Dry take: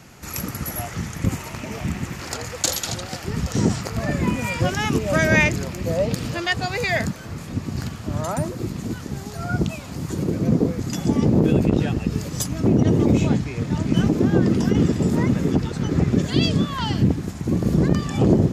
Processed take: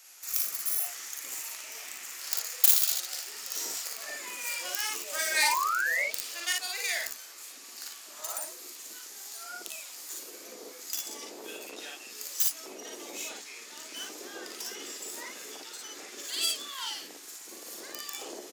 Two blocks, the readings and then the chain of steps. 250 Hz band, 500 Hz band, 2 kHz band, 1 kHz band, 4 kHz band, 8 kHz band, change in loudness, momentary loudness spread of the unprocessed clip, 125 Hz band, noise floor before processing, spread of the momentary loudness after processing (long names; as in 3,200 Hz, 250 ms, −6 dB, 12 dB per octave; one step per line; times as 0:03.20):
−33.5 dB, −21.0 dB, −7.0 dB, −7.0 dB, −2.5 dB, +0.5 dB, −9.0 dB, 12 LU, below −40 dB, −35 dBFS, 15 LU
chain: stylus tracing distortion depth 0.21 ms
high-pass filter 330 Hz 24 dB per octave
first difference
sound drawn into the spectrogram rise, 0:05.42–0:06.05, 840–2,300 Hz −31 dBFS
ambience of single reflections 42 ms −5 dB, 56 ms −3 dB